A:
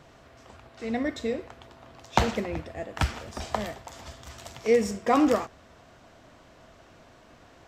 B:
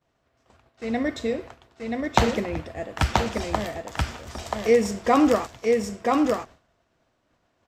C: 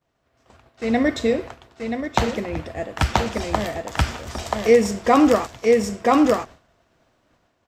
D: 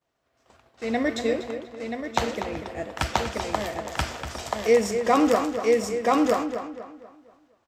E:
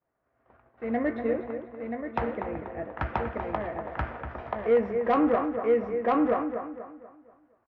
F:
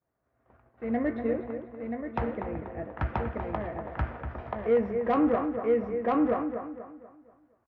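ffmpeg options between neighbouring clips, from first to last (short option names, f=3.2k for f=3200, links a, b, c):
-af "agate=range=-33dB:threshold=-40dB:ratio=3:detection=peak,aecho=1:1:981:0.708,volume=3dB"
-af "dynaudnorm=f=140:g=5:m=7.5dB,volume=-1dB"
-filter_complex "[0:a]bass=f=250:g=-6,treble=f=4k:g=2,asplit=2[a][b];[b]adelay=242,lowpass=f=3.6k:p=1,volume=-8.5dB,asplit=2[c][d];[d]adelay=242,lowpass=f=3.6k:p=1,volume=0.41,asplit=2[e][f];[f]adelay=242,lowpass=f=3.6k:p=1,volume=0.41,asplit=2[g][h];[h]adelay=242,lowpass=f=3.6k:p=1,volume=0.41,asplit=2[i][j];[j]adelay=242,lowpass=f=3.6k:p=1,volume=0.41[k];[c][e][g][i][k]amix=inputs=5:normalize=0[l];[a][l]amix=inputs=2:normalize=0,volume=-4dB"
-filter_complex "[0:a]lowpass=f=1.9k:w=0.5412,lowpass=f=1.9k:w=1.3066,asoftclip=type=tanh:threshold=-12.5dB,asplit=2[a][b];[b]adelay=17,volume=-12.5dB[c];[a][c]amix=inputs=2:normalize=0,volume=-2.5dB"
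-af "equalizer=f=84:w=0.33:g=7,volume=-3.5dB"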